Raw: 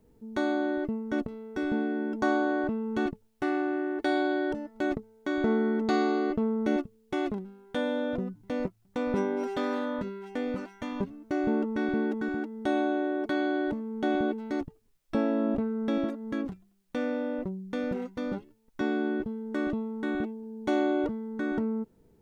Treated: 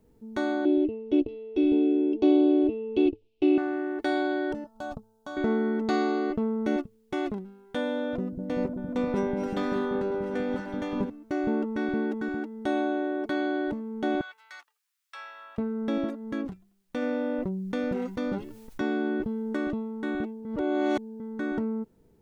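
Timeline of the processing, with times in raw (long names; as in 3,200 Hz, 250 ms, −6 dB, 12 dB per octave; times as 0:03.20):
0:00.65–0:03.58: drawn EQ curve 100 Hz 0 dB, 180 Hz −23 dB, 310 Hz +12 dB, 890 Hz −10 dB, 1,700 Hz −26 dB, 2,600 Hz +10 dB, 4,900 Hz −5 dB, 7,900 Hz −20 dB
0:04.64–0:05.37: phaser with its sweep stopped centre 850 Hz, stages 4
0:08.00–0:11.10: echo whose low-pass opens from repeat to repeat 193 ms, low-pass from 200 Hz, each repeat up 1 octave, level 0 dB
0:14.21–0:15.58: high-pass filter 1,200 Hz 24 dB per octave
0:17.02–0:19.57: envelope flattener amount 50%
0:20.45–0:21.20: reverse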